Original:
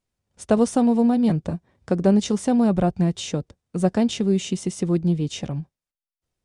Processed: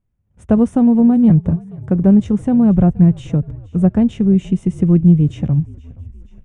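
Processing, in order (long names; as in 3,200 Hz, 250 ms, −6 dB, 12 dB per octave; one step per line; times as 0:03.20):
bass and treble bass +15 dB, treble −9 dB
automatic gain control
parametric band 4,600 Hz −14.5 dB 0.76 octaves
echo with shifted repeats 474 ms, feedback 65%, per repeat −47 Hz, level −22 dB
level −1 dB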